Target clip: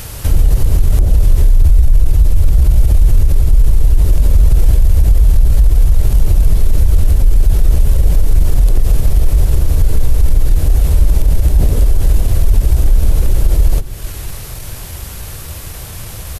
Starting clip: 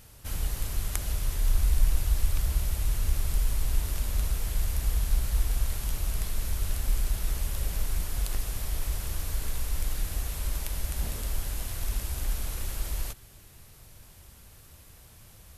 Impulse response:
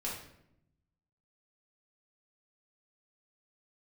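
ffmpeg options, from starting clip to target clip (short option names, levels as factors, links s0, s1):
-filter_complex "[0:a]asplit=2[s0][s1];[s1]adelay=556,lowpass=f=3200:p=1,volume=0.0794,asplit=2[s2][s3];[s3]adelay=556,lowpass=f=3200:p=1,volume=0.26[s4];[s0][s2][s4]amix=inputs=3:normalize=0,atempo=0.95,acrossover=split=560[s5][s6];[s6]acompressor=threshold=0.002:ratio=16[s7];[s5][s7]amix=inputs=2:normalize=0,equalizer=f=230:t=o:w=0.59:g=-5,alimiter=level_in=21.1:limit=0.891:release=50:level=0:latency=1,volume=0.891"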